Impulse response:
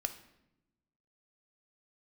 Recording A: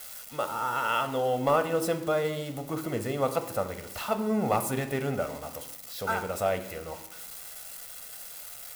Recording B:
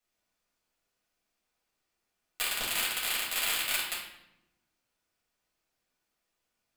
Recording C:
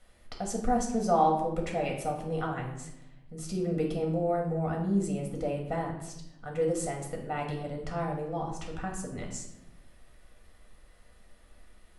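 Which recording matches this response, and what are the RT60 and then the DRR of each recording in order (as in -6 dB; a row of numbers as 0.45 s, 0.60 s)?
A; 0.90 s, 0.85 s, 0.85 s; 8.0 dB, -7.5 dB, -0.5 dB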